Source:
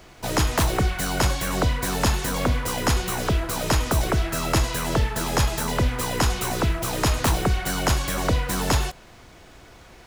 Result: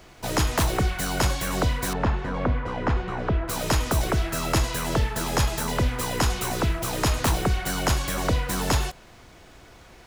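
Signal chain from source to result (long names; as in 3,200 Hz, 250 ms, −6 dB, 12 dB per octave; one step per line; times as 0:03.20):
0:01.93–0:03.48: low-pass filter 1,800 Hz 12 dB per octave
level −1.5 dB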